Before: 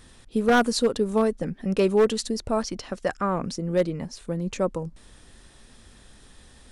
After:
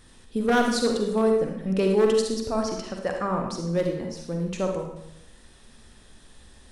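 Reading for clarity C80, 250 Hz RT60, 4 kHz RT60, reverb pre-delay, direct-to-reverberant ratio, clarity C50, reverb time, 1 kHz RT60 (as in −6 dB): 6.5 dB, 0.80 s, 0.70 s, 40 ms, 2.0 dB, 3.5 dB, 0.80 s, 0.85 s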